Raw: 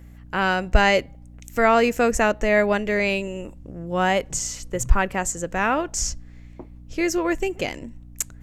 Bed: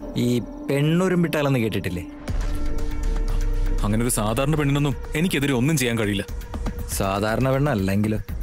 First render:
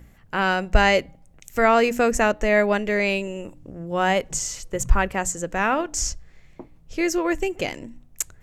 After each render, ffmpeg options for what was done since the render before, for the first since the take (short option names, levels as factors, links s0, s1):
-af "bandreject=f=60:t=h:w=4,bandreject=f=120:t=h:w=4,bandreject=f=180:t=h:w=4,bandreject=f=240:t=h:w=4,bandreject=f=300:t=h:w=4"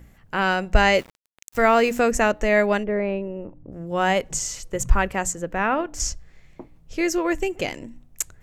-filter_complex "[0:a]asettb=1/sr,asplit=3[s0][s1][s2];[s0]atrim=end=0.944[s3];[s1]atrim=start=0.94:end=2,asetpts=PTS-STARTPTS,afade=t=in:d=0.004:c=qsin,afade=t=out:st=1.056:d=0.004:c=qsin,aeval=exprs='val(0)*gte(abs(val(0)),0.0119)':c=same[s4];[s2]atrim=start=1.996[s5];[s3][s4]acrossfade=d=0.004:c1=hsin:c2=qsin[s6];[s6][s5]acrossfade=d=0.004:c1=qsin:c2=hsin,asplit=3[s7][s8][s9];[s7]afade=t=out:st=2.83:d=0.02[s10];[s8]lowpass=1100,afade=t=in:st=2.83:d=0.02,afade=t=out:st=3.71:d=0.02[s11];[s9]afade=t=in:st=3.71:d=0.02[s12];[s10][s11][s12]amix=inputs=3:normalize=0,asettb=1/sr,asplit=3[s13][s14][s15];[s13]atrim=end=5.334[s16];[s14]atrim=start=5.33:end=6,asetpts=PTS-STARTPTS,afade=t=in:d=0.004:c=qsin,afade=t=out:st=0.666:d=0.004:c=qsin,equalizer=f=7300:w=0.76:g=-12.5[s17];[s15]atrim=start=5.996[s18];[s16][s17]acrossfade=d=0.004:c1=hsin:c2=qsin[s19];[s19][s18]acrossfade=d=0.004:c1=qsin:c2=hsin"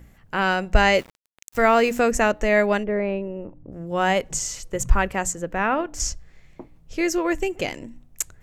-af anull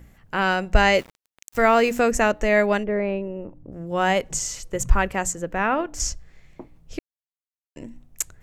-filter_complex "[0:a]asplit=3[s0][s1][s2];[s0]atrim=end=6.99,asetpts=PTS-STARTPTS,afade=t=out:st=6.986:d=0.004:c=hsin[s3];[s1]atrim=start=6.99:end=7.76,asetpts=PTS-STARTPTS,volume=0[s4];[s2]atrim=start=7.76,asetpts=PTS-STARTPTS,afade=t=in:d=0.004:c=hsin[s5];[s3][s4][s5]concat=n=3:v=0:a=1"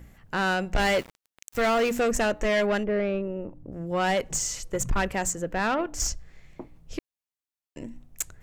-af "asoftclip=type=tanh:threshold=0.112"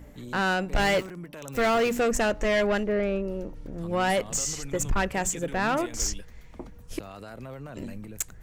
-filter_complex "[1:a]volume=0.1[s0];[0:a][s0]amix=inputs=2:normalize=0"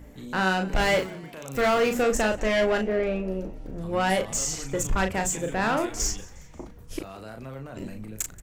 -filter_complex "[0:a]asplit=2[s0][s1];[s1]adelay=37,volume=0.501[s2];[s0][s2]amix=inputs=2:normalize=0,asplit=4[s3][s4][s5][s6];[s4]adelay=179,afreqshift=64,volume=0.0794[s7];[s5]adelay=358,afreqshift=128,volume=0.038[s8];[s6]adelay=537,afreqshift=192,volume=0.0182[s9];[s3][s7][s8][s9]amix=inputs=4:normalize=0"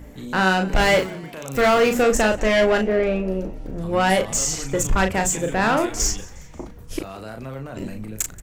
-af "volume=1.88"